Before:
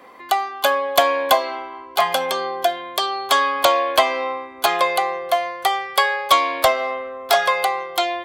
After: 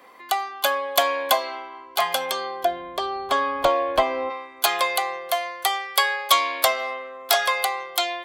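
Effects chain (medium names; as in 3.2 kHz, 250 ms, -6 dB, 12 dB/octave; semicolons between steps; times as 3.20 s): tilt EQ +1.5 dB/octave, from 2.63 s -3 dB/octave, from 4.29 s +2.5 dB/octave; trim -4.5 dB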